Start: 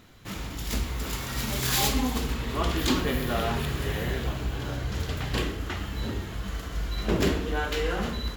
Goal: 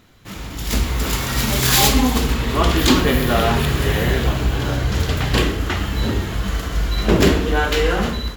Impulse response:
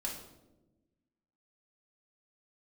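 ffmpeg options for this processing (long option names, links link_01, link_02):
-af "dynaudnorm=framelen=260:gausssize=5:maxgain=10dB,volume=1.5dB"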